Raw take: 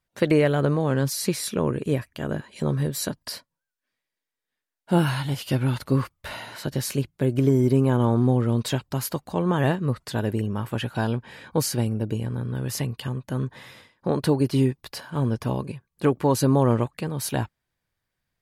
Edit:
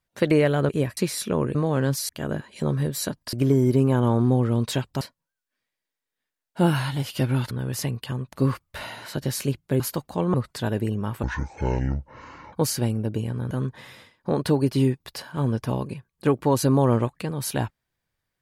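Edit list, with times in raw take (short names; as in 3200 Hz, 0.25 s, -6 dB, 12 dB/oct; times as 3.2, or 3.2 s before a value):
0.69–1.23 swap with 1.81–2.09
7.3–8.98 move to 3.33
9.52–9.86 cut
10.75–11.49 speed 57%
12.47–13.29 move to 5.83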